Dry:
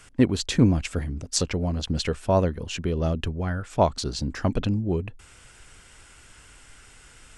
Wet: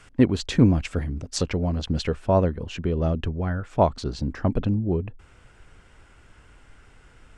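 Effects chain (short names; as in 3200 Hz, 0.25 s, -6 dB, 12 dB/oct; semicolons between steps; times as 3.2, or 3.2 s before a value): LPF 3100 Hz 6 dB/oct, from 2.05 s 1800 Hz, from 4.36 s 1100 Hz; gain +1.5 dB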